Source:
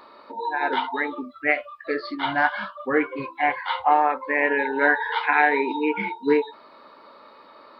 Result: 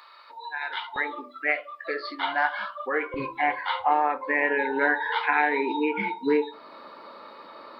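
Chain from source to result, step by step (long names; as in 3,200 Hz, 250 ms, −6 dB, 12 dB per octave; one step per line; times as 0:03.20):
downward compressor 1.5 to 1, threshold −35 dBFS, peak gain reduction 8 dB
high-pass filter 1,500 Hz 12 dB per octave, from 0:00.96 480 Hz, from 0:03.14 100 Hz
convolution reverb, pre-delay 6 ms, DRR 14.5 dB
level +3.5 dB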